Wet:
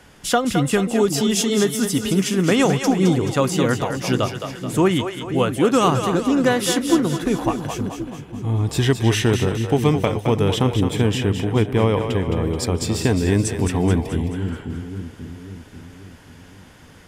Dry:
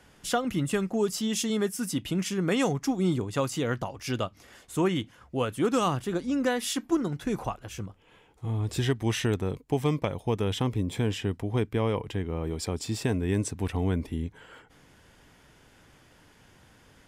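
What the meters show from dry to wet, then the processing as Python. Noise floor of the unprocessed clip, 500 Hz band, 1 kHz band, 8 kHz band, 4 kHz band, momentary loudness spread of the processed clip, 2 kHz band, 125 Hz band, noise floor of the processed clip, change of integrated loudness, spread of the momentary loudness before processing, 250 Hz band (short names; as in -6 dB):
-58 dBFS, +9.5 dB, +9.5 dB, +9.5 dB, +9.5 dB, 10 LU, +9.5 dB, +9.5 dB, -45 dBFS, +9.5 dB, 6 LU, +9.5 dB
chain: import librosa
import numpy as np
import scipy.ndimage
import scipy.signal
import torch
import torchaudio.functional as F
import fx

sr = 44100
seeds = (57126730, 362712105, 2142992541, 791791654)

y = fx.echo_split(x, sr, split_hz=390.0, low_ms=537, high_ms=215, feedback_pct=52, wet_db=-7)
y = y * 10.0 ** (8.5 / 20.0)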